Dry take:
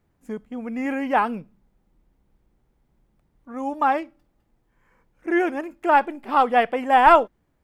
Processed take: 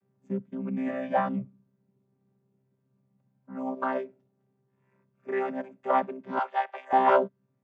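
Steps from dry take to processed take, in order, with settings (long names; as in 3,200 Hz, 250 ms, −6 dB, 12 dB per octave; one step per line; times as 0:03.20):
channel vocoder with a chord as carrier bare fifth, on C3
0:00.87–0:01.29: double-tracking delay 17 ms −4 dB
0:06.39–0:06.93: high-pass filter 770 Hz 24 dB per octave
level −5.5 dB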